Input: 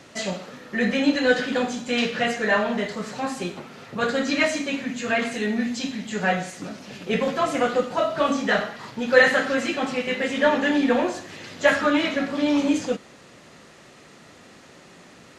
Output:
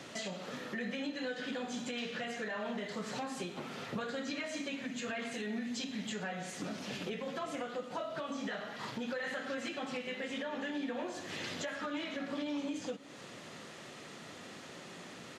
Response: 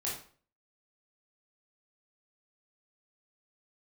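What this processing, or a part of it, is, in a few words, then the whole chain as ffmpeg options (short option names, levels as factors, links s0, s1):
broadcast voice chain: -af "highpass=100,deesser=0.55,acompressor=threshold=0.0178:ratio=3,equalizer=f=3300:t=o:w=0.35:g=3.5,alimiter=level_in=1.68:limit=0.0631:level=0:latency=1:release=175,volume=0.596,aecho=1:1:357:0.0944,volume=0.891"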